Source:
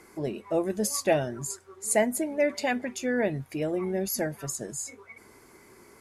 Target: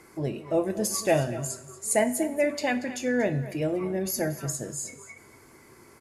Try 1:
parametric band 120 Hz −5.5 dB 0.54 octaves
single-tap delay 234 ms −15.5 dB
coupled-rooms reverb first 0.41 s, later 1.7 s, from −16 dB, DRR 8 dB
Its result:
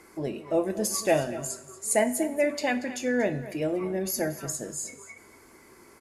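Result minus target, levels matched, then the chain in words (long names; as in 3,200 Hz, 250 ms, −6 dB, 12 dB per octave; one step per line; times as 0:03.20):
125 Hz band −5.0 dB
parametric band 120 Hz +6.5 dB 0.54 octaves
single-tap delay 234 ms −15.5 dB
coupled-rooms reverb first 0.41 s, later 1.7 s, from −16 dB, DRR 8 dB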